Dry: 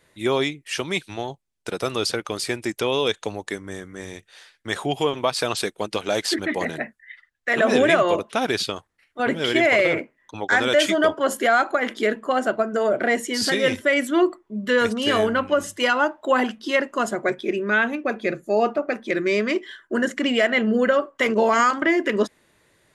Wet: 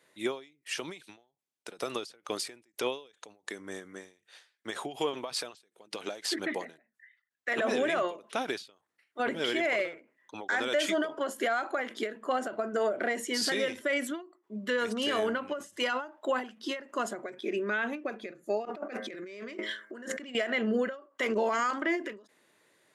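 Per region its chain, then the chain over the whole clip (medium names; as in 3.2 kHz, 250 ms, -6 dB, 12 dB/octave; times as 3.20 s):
18.65–20.35 s: de-hum 106 Hz, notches 21 + compressor with a negative ratio -34 dBFS
whole clip: high-pass 230 Hz 12 dB/octave; peak limiter -15 dBFS; endings held to a fixed fall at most 150 dB/s; trim -5 dB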